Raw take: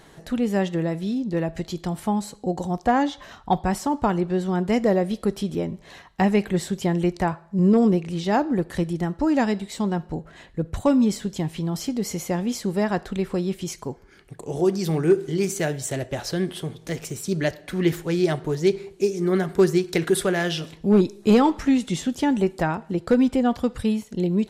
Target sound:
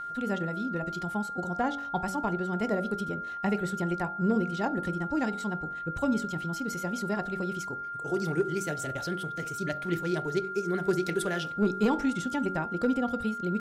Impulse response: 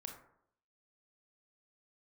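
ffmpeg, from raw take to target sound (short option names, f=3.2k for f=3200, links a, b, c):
-af "atempo=1.8,bandreject=f=47.11:t=h:w=4,bandreject=f=94.22:t=h:w=4,bandreject=f=141.33:t=h:w=4,bandreject=f=188.44:t=h:w=4,bandreject=f=235.55:t=h:w=4,bandreject=f=282.66:t=h:w=4,bandreject=f=329.77:t=h:w=4,bandreject=f=376.88:t=h:w=4,bandreject=f=423.99:t=h:w=4,bandreject=f=471.1:t=h:w=4,bandreject=f=518.21:t=h:w=4,bandreject=f=565.32:t=h:w=4,bandreject=f=612.43:t=h:w=4,bandreject=f=659.54:t=h:w=4,bandreject=f=706.65:t=h:w=4,bandreject=f=753.76:t=h:w=4,bandreject=f=800.87:t=h:w=4,bandreject=f=847.98:t=h:w=4,bandreject=f=895.09:t=h:w=4,aeval=exprs='val(0)+0.0447*sin(2*PI*1400*n/s)':c=same,volume=-7.5dB"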